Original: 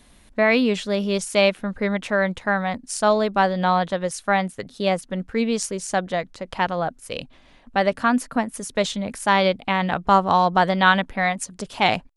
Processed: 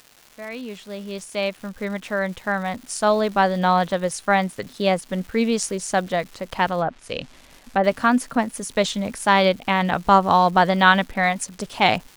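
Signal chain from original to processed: opening faded in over 3.79 s; crackle 470/s -37 dBFS; 6.8–7.84 treble ducked by the level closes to 1100 Hz, closed at -18.5 dBFS; gain +1.5 dB

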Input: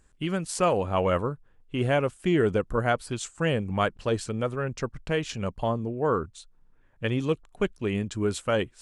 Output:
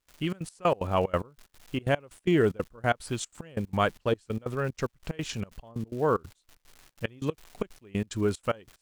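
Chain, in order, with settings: crackle 450/s -41 dBFS; step gate ".xxx.x..x" 185 bpm -24 dB

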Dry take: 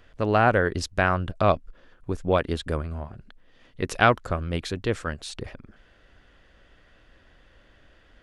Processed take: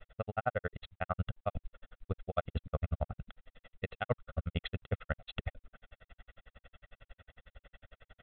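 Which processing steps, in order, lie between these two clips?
reverse; compressor 20:1, threshold -29 dBFS, peak gain reduction 18 dB; reverse; grains 46 ms, grains 11/s, spray 12 ms, pitch spread up and down by 0 st; comb 1.5 ms, depth 84%; gain +1 dB; µ-law 64 kbps 8000 Hz

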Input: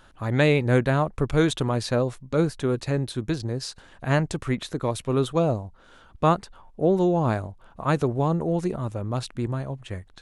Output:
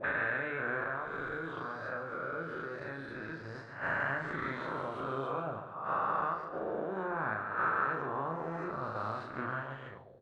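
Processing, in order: spectral swells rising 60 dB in 1.86 s; de-esser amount 60%; gate -26 dBFS, range -15 dB; tilt +2.5 dB/oct; compressor 8:1, threshold -35 dBFS, peak gain reduction 20 dB; 0.84–3.55 resonator 56 Hz, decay 0.24 s, harmonics all, mix 60%; wow and flutter 21 cents; doubler 37 ms -4 dB; feedback echo 0.142 s, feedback 48%, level -10 dB; envelope low-pass 280–1500 Hz up, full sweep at -40 dBFS; gain -2.5 dB

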